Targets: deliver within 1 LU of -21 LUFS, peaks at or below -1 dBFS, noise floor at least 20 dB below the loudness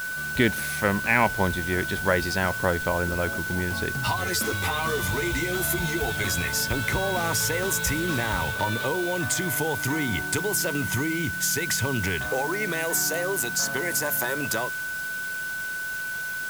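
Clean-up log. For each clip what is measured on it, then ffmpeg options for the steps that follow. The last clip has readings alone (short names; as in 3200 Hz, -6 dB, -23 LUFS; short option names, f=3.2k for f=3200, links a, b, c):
steady tone 1500 Hz; tone level -29 dBFS; noise floor -31 dBFS; noise floor target -45 dBFS; loudness -25.0 LUFS; peak -7.0 dBFS; loudness target -21.0 LUFS
-> -af "bandreject=f=1.5k:w=30"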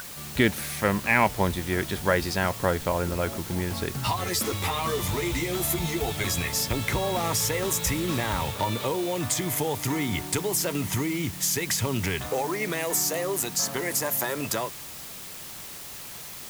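steady tone none; noise floor -40 dBFS; noise floor target -47 dBFS
-> -af "afftdn=nr=7:nf=-40"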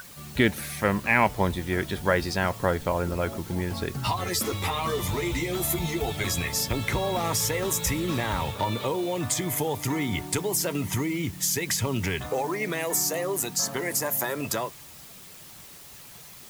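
noise floor -46 dBFS; noise floor target -47 dBFS
-> -af "afftdn=nr=6:nf=-46"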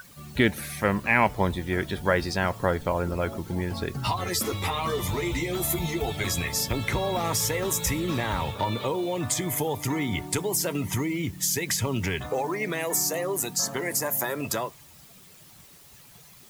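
noise floor -51 dBFS; loudness -27.0 LUFS; peak -8.0 dBFS; loudness target -21.0 LUFS
-> -af "volume=6dB"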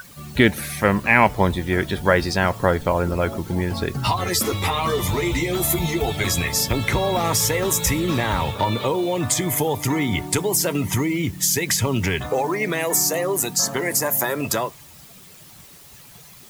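loudness -21.0 LUFS; peak -2.0 dBFS; noise floor -45 dBFS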